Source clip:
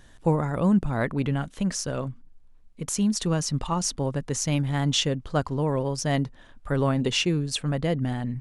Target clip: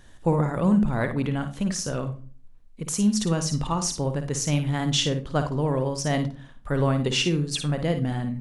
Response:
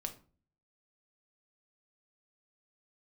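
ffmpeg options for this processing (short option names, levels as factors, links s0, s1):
-filter_complex "[0:a]asplit=2[s0][s1];[1:a]atrim=start_sample=2205,highshelf=f=9600:g=5.5,adelay=54[s2];[s1][s2]afir=irnorm=-1:irlink=0,volume=0.473[s3];[s0][s3]amix=inputs=2:normalize=0"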